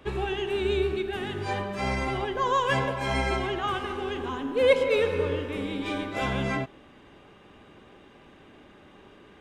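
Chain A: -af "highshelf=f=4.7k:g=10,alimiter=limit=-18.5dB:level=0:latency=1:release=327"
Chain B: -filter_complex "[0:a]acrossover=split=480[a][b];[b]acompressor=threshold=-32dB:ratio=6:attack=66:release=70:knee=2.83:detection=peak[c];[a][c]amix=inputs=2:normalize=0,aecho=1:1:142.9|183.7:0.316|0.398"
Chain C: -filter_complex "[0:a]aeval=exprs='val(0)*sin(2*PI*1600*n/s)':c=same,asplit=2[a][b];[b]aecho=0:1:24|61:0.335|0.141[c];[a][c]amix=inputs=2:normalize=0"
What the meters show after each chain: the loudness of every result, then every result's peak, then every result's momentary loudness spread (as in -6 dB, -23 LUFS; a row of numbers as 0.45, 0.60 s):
-29.5, -28.0, -28.5 LUFS; -18.5, -12.5, -9.0 dBFS; 4, 7, 9 LU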